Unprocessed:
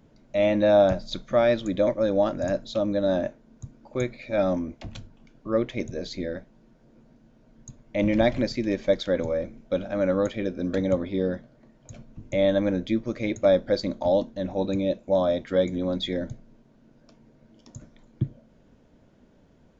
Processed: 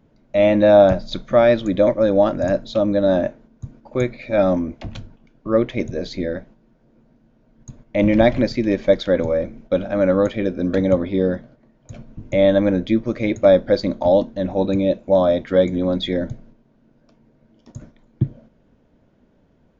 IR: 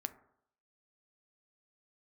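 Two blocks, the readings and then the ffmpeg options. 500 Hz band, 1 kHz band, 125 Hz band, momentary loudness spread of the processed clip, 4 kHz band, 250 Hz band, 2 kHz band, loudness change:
+7.0 dB, +7.0 dB, +7.0 dB, 11 LU, +4.0 dB, +7.0 dB, +6.0 dB, +7.0 dB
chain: -af "agate=range=-7dB:threshold=-50dB:ratio=16:detection=peak,highshelf=f=5.9k:g=-11.5,aresample=16000,aresample=44100,volume=7dB"

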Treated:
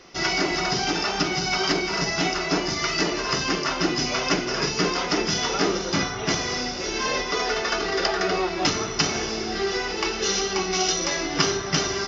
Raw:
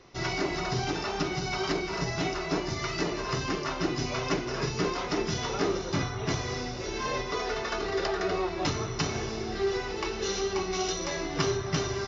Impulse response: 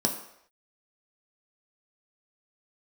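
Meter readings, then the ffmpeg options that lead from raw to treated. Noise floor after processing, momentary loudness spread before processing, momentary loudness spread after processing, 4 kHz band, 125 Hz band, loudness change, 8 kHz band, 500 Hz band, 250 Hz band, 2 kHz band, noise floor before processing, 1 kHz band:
-30 dBFS, 2 LU, 3 LU, +10.5 dB, +0.5 dB, +7.0 dB, n/a, +4.0 dB, +5.0 dB, +8.5 dB, -35 dBFS, +6.0 dB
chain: -filter_complex "[0:a]tiltshelf=f=970:g=-4.5,asplit=2[a][b];[1:a]atrim=start_sample=2205,asetrate=37926,aresample=44100[c];[b][c]afir=irnorm=-1:irlink=0,volume=-20dB[d];[a][d]amix=inputs=2:normalize=0,volume=5dB"

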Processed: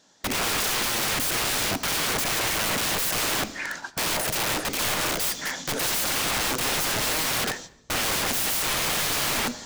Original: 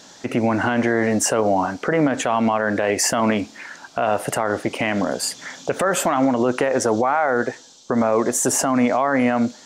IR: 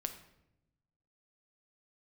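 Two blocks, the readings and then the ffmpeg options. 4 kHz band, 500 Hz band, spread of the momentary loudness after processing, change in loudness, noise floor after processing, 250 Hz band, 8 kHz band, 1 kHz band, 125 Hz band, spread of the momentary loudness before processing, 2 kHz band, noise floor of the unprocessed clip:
+7.5 dB, -13.0 dB, 5 LU, -3.5 dB, -50 dBFS, -14.5 dB, -0.5 dB, -8.0 dB, -6.5 dB, 7 LU, -1.5 dB, -46 dBFS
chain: -filter_complex "[0:a]agate=range=-20dB:threshold=-40dB:ratio=16:detection=peak,aeval=exprs='(mod(18.8*val(0)+1,2)-1)/18.8':c=same,asplit=2[a][b];[1:a]atrim=start_sample=2205[c];[b][c]afir=irnorm=-1:irlink=0,volume=-1.5dB[d];[a][d]amix=inputs=2:normalize=0"

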